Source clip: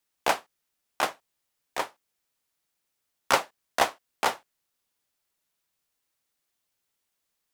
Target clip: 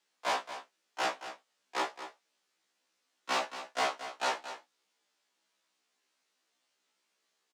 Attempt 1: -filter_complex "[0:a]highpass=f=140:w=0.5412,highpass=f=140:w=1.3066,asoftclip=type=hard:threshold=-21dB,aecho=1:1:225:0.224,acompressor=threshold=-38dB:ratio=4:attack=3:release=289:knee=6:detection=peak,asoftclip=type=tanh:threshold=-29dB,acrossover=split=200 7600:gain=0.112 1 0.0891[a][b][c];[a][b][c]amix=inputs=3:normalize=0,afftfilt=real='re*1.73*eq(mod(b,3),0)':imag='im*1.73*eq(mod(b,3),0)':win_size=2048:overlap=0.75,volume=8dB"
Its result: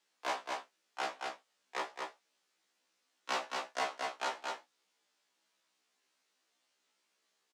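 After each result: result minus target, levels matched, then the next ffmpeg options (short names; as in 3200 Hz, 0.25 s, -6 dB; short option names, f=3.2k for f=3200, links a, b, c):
compressor: peak gain reduction +12.5 dB; hard clip: distortion -6 dB
-filter_complex "[0:a]highpass=f=140:w=0.5412,highpass=f=140:w=1.3066,asoftclip=type=hard:threshold=-21dB,aecho=1:1:225:0.224,asoftclip=type=tanh:threshold=-29dB,acrossover=split=200 7600:gain=0.112 1 0.0891[a][b][c];[a][b][c]amix=inputs=3:normalize=0,afftfilt=real='re*1.73*eq(mod(b,3),0)':imag='im*1.73*eq(mod(b,3),0)':win_size=2048:overlap=0.75,volume=8dB"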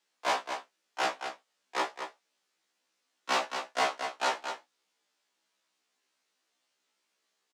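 hard clip: distortion -6 dB
-filter_complex "[0:a]highpass=f=140:w=0.5412,highpass=f=140:w=1.3066,asoftclip=type=hard:threshold=-31.5dB,aecho=1:1:225:0.224,asoftclip=type=tanh:threshold=-29dB,acrossover=split=200 7600:gain=0.112 1 0.0891[a][b][c];[a][b][c]amix=inputs=3:normalize=0,afftfilt=real='re*1.73*eq(mod(b,3),0)':imag='im*1.73*eq(mod(b,3),0)':win_size=2048:overlap=0.75,volume=8dB"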